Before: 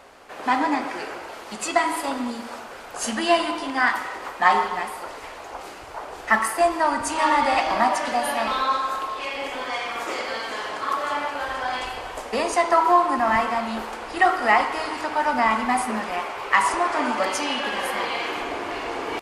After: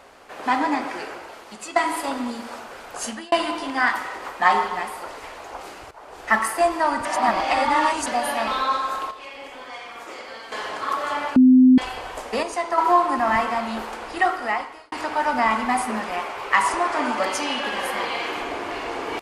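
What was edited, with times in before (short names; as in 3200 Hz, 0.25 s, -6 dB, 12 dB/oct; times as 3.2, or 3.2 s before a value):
0.94–1.76 fade out, to -9 dB
2.97–3.32 fade out
5.91–6.32 fade in, from -15.5 dB
7.05–8.06 reverse
9.11–10.52 gain -8.5 dB
11.36–11.78 bleep 256 Hz -8.5 dBFS
12.43–12.78 gain -5.5 dB
14.06–14.92 fade out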